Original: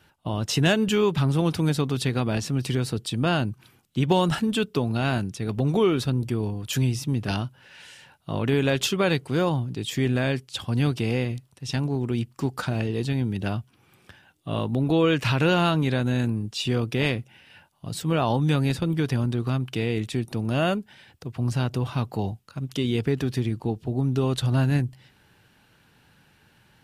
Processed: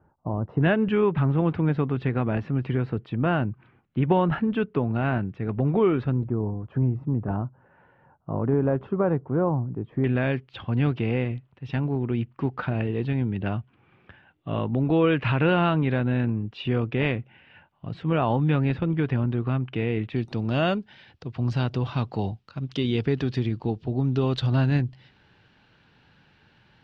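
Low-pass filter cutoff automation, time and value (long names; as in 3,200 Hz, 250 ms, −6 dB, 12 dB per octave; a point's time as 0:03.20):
low-pass filter 24 dB per octave
1,100 Hz
from 0:00.61 2,200 Hz
from 0:06.27 1,200 Hz
from 0:10.04 2,700 Hz
from 0:20.16 4,700 Hz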